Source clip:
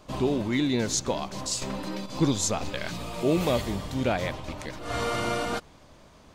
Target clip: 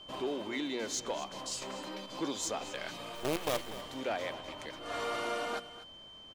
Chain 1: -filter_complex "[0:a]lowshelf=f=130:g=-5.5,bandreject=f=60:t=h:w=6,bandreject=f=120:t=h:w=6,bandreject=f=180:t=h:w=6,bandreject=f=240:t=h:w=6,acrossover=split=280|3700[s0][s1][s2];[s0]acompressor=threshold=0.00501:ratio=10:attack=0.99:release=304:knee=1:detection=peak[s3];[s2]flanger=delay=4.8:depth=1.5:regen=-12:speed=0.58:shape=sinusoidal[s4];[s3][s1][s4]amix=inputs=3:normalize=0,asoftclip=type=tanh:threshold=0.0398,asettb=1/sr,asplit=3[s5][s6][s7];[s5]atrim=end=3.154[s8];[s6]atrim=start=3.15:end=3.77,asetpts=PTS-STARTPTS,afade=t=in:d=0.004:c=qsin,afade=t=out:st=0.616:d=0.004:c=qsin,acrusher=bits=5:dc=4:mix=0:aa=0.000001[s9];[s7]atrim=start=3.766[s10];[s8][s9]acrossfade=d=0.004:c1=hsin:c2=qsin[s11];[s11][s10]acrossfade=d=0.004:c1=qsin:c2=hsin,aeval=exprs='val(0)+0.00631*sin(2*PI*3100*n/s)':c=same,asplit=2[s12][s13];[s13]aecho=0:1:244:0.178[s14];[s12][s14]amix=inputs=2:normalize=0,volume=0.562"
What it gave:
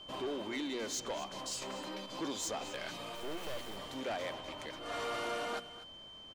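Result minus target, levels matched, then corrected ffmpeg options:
saturation: distortion +7 dB
-filter_complex "[0:a]lowshelf=f=130:g=-5.5,bandreject=f=60:t=h:w=6,bandreject=f=120:t=h:w=6,bandreject=f=180:t=h:w=6,bandreject=f=240:t=h:w=6,acrossover=split=280|3700[s0][s1][s2];[s0]acompressor=threshold=0.00501:ratio=10:attack=0.99:release=304:knee=1:detection=peak[s3];[s2]flanger=delay=4.8:depth=1.5:regen=-12:speed=0.58:shape=sinusoidal[s4];[s3][s1][s4]amix=inputs=3:normalize=0,asoftclip=type=tanh:threshold=0.0891,asettb=1/sr,asplit=3[s5][s6][s7];[s5]atrim=end=3.154[s8];[s6]atrim=start=3.15:end=3.77,asetpts=PTS-STARTPTS,afade=t=in:d=0.004:c=qsin,afade=t=out:st=0.616:d=0.004:c=qsin,acrusher=bits=5:dc=4:mix=0:aa=0.000001[s9];[s7]atrim=start=3.766[s10];[s8][s9]acrossfade=d=0.004:c1=hsin:c2=qsin[s11];[s11][s10]acrossfade=d=0.004:c1=qsin:c2=hsin,aeval=exprs='val(0)+0.00631*sin(2*PI*3100*n/s)':c=same,asplit=2[s12][s13];[s13]aecho=0:1:244:0.178[s14];[s12][s14]amix=inputs=2:normalize=0,volume=0.562"

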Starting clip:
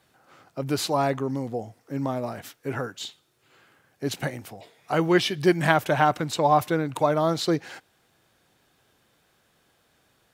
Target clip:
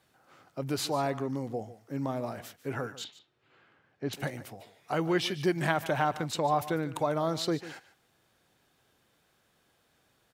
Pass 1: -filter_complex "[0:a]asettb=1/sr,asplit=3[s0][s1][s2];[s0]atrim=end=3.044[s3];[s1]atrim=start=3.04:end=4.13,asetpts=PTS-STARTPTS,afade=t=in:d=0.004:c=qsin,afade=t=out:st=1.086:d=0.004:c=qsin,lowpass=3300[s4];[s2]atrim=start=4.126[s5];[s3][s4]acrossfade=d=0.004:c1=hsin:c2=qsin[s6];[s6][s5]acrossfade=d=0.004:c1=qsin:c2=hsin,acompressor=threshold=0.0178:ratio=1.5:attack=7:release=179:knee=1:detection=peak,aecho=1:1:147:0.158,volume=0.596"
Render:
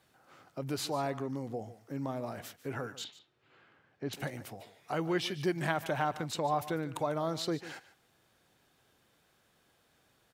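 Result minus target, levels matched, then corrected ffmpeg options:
compression: peak gain reduction +4 dB
-filter_complex "[0:a]asettb=1/sr,asplit=3[s0][s1][s2];[s0]atrim=end=3.044[s3];[s1]atrim=start=3.04:end=4.13,asetpts=PTS-STARTPTS,afade=t=in:d=0.004:c=qsin,afade=t=out:st=1.086:d=0.004:c=qsin,lowpass=3300[s4];[s2]atrim=start=4.126[s5];[s3][s4]acrossfade=d=0.004:c1=hsin:c2=qsin[s6];[s6][s5]acrossfade=d=0.004:c1=qsin:c2=hsin,acompressor=threshold=0.0668:ratio=1.5:attack=7:release=179:knee=1:detection=peak,aecho=1:1:147:0.158,volume=0.596"

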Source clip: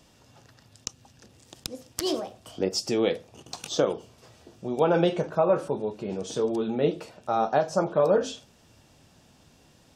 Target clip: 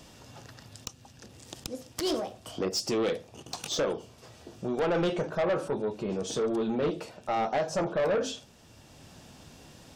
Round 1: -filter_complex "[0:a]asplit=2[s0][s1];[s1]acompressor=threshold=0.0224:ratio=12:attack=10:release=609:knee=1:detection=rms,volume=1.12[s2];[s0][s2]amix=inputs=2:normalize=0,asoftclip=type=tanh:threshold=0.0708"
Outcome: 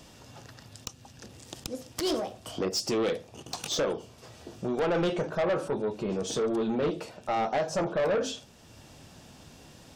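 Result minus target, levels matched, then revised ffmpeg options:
compression: peak gain reduction -6.5 dB
-filter_complex "[0:a]asplit=2[s0][s1];[s1]acompressor=threshold=0.01:ratio=12:attack=10:release=609:knee=1:detection=rms,volume=1.12[s2];[s0][s2]amix=inputs=2:normalize=0,asoftclip=type=tanh:threshold=0.0708"

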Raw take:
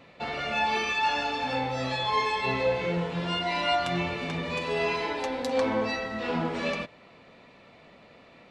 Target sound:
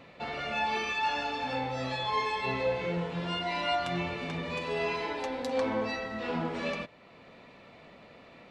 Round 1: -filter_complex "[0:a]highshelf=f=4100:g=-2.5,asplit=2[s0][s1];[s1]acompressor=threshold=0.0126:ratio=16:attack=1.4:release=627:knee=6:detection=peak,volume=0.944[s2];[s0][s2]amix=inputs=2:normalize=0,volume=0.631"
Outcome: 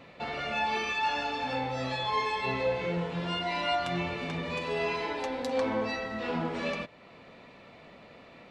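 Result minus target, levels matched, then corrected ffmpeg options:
compression: peak gain reduction -8.5 dB
-filter_complex "[0:a]highshelf=f=4100:g=-2.5,asplit=2[s0][s1];[s1]acompressor=threshold=0.00447:ratio=16:attack=1.4:release=627:knee=6:detection=peak,volume=0.944[s2];[s0][s2]amix=inputs=2:normalize=0,volume=0.631"

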